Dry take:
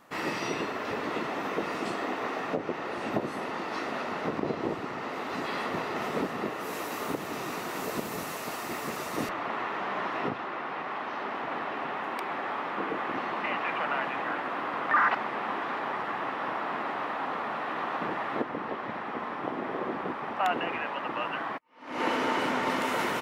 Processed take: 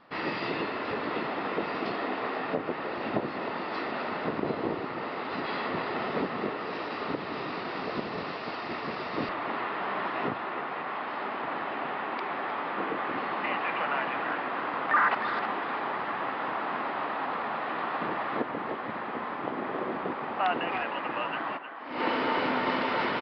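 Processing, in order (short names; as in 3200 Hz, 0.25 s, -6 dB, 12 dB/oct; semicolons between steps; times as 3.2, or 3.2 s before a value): speakerphone echo 0.31 s, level -8 dB; downsampling 11025 Hz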